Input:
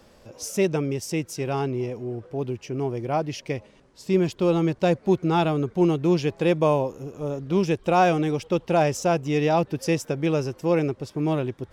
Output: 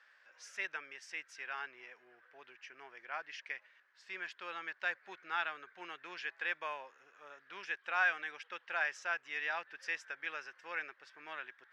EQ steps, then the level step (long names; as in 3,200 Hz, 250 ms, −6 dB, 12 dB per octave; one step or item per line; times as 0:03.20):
four-pole ladder band-pass 1,800 Hz, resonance 70%
+4.0 dB